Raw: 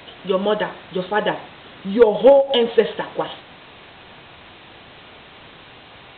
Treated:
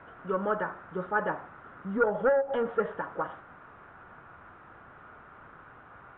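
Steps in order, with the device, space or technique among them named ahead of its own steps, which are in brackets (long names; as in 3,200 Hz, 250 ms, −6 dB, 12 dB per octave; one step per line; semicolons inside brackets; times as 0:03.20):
overdriven synthesiser ladder filter (soft clipping −9.5 dBFS, distortion −12 dB; transistor ladder low-pass 1,500 Hz, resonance 70%)
low-shelf EQ 160 Hz +5.5 dB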